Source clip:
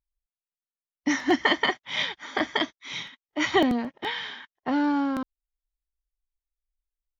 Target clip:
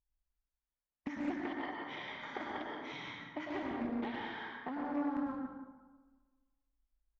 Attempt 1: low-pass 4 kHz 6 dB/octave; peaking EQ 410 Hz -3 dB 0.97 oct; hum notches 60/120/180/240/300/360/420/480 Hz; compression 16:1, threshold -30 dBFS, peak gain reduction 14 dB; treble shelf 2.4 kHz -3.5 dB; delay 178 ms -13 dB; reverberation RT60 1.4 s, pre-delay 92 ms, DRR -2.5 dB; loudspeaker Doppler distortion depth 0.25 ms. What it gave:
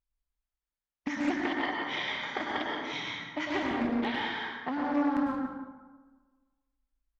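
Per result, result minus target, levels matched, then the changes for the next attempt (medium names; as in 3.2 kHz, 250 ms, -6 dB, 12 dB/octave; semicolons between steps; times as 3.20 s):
compression: peak gain reduction -7.5 dB; 4 kHz band +4.5 dB
change: compression 16:1, threshold -38 dBFS, peak gain reduction 21.5 dB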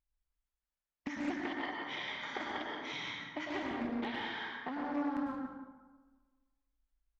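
4 kHz band +5.0 dB
change: treble shelf 2.4 kHz -14 dB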